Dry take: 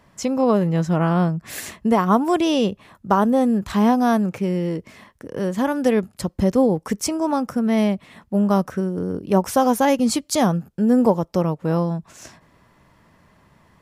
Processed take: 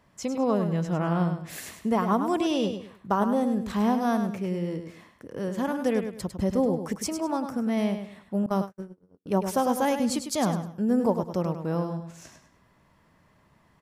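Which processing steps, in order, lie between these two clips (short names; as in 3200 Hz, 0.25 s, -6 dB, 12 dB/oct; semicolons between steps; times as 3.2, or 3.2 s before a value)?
on a send: feedback echo 0.102 s, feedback 29%, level -8 dB; 8.46–9.26 on the sum: gate -19 dBFS, range -52 dB; gain -7.5 dB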